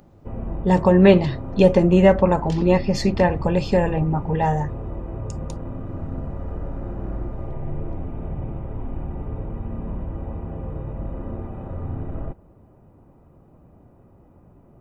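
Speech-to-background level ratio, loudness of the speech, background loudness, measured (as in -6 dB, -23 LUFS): 13.5 dB, -18.5 LUFS, -32.0 LUFS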